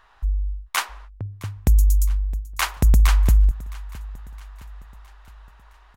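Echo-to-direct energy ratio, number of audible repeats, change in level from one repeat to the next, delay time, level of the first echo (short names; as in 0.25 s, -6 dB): -18.5 dB, 3, -5.5 dB, 0.664 s, -20.0 dB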